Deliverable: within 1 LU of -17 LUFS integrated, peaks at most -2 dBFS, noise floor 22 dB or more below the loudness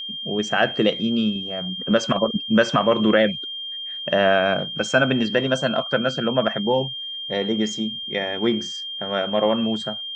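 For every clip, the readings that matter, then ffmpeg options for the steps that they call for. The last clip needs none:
steady tone 3200 Hz; tone level -29 dBFS; loudness -21.5 LUFS; peak -3.5 dBFS; loudness target -17.0 LUFS
-> -af "bandreject=f=3.2k:w=30"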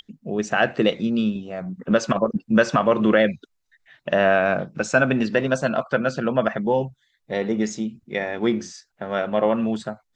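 steady tone none; loudness -22.5 LUFS; peak -4.0 dBFS; loudness target -17.0 LUFS
-> -af "volume=5.5dB,alimiter=limit=-2dB:level=0:latency=1"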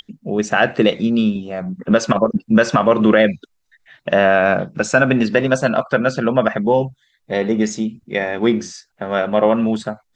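loudness -17.5 LUFS; peak -2.0 dBFS; noise floor -68 dBFS

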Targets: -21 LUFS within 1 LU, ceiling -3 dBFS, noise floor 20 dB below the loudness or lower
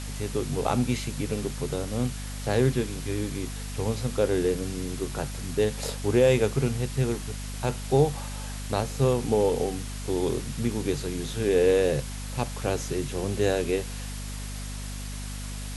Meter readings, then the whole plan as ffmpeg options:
hum 50 Hz; harmonics up to 250 Hz; hum level -33 dBFS; noise floor -35 dBFS; noise floor target -48 dBFS; loudness -27.5 LUFS; peak -8.5 dBFS; loudness target -21.0 LUFS
-> -af "bandreject=f=50:t=h:w=4,bandreject=f=100:t=h:w=4,bandreject=f=150:t=h:w=4,bandreject=f=200:t=h:w=4,bandreject=f=250:t=h:w=4"
-af "afftdn=nr=13:nf=-35"
-af "volume=6.5dB,alimiter=limit=-3dB:level=0:latency=1"

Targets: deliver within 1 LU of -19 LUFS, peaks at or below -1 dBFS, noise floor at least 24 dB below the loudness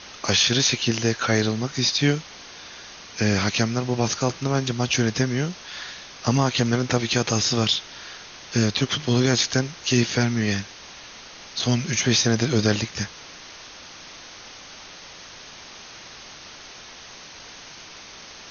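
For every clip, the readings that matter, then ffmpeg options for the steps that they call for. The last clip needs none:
noise floor -43 dBFS; noise floor target -47 dBFS; loudness -22.5 LUFS; peak -5.0 dBFS; loudness target -19.0 LUFS
-> -af "afftdn=nr=6:nf=-43"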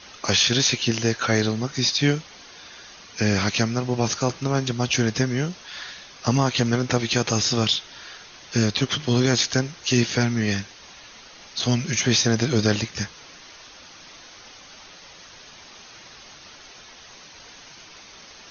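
noise floor -46 dBFS; noise floor target -47 dBFS
-> -af "afftdn=nr=6:nf=-46"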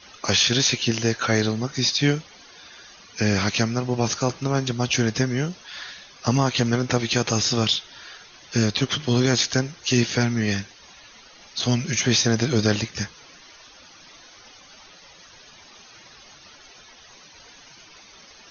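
noise floor -49 dBFS; loudness -22.5 LUFS; peak -5.0 dBFS; loudness target -19.0 LUFS
-> -af "volume=3.5dB"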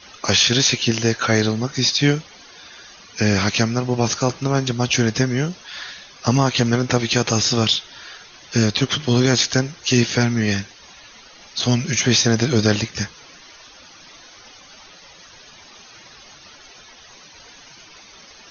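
loudness -19.0 LUFS; peak -1.5 dBFS; noise floor -45 dBFS

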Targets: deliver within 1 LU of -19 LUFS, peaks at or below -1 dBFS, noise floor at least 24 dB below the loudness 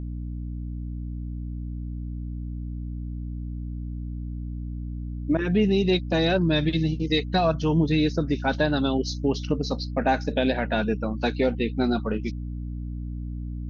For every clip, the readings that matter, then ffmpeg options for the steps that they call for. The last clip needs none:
hum 60 Hz; harmonics up to 300 Hz; hum level -29 dBFS; loudness -26.5 LUFS; peak -10.5 dBFS; loudness target -19.0 LUFS
-> -af "bandreject=f=60:t=h:w=4,bandreject=f=120:t=h:w=4,bandreject=f=180:t=h:w=4,bandreject=f=240:t=h:w=4,bandreject=f=300:t=h:w=4"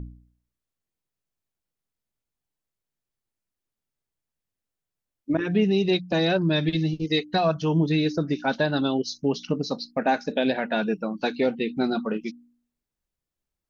hum none; loudness -25.0 LUFS; peak -11.0 dBFS; loudness target -19.0 LUFS
-> -af "volume=6dB"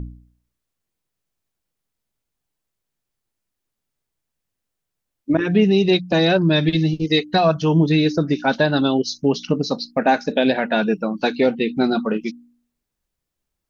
loudness -19.0 LUFS; peak -5.0 dBFS; noise floor -81 dBFS

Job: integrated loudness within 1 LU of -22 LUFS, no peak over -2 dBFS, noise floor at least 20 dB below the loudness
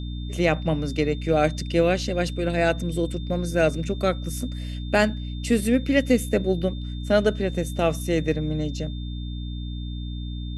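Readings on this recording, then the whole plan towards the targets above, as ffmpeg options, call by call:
hum 60 Hz; harmonics up to 300 Hz; hum level -29 dBFS; steady tone 3600 Hz; tone level -44 dBFS; loudness -24.5 LUFS; peak -6.0 dBFS; loudness target -22.0 LUFS
-> -af "bandreject=f=60:t=h:w=4,bandreject=f=120:t=h:w=4,bandreject=f=180:t=h:w=4,bandreject=f=240:t=h:w=4,bandreject=f=300:t=h:w=4"
-af "bandreject=f=3.6k:w=30"
-af "volume=2.5dB"

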